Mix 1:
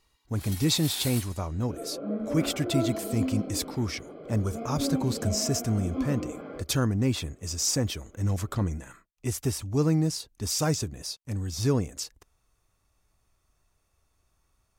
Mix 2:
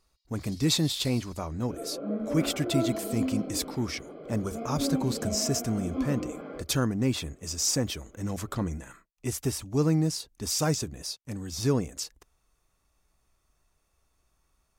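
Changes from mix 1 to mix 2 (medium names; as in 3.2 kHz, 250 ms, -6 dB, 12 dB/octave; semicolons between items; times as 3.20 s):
first sound: add band-pass filter 4.8 kHz, Q 4.3; master: add peaking EQ 98 Hz -10.5 dB 0.34 oct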